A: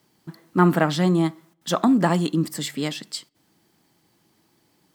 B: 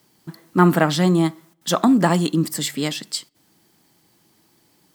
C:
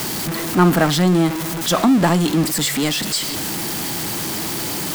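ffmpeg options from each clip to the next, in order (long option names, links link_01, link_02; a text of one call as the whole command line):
ffmpeg -i in.wav -af "highshelf=frequency=5100:gain=5.5,volume=2.5dB" out.wav
ffmpeg -i in.wav -af "aeval=exprs='val(0)+0.5*0.133*sgn(val(0))':channel_layout=same,volume=-1dB" out.wav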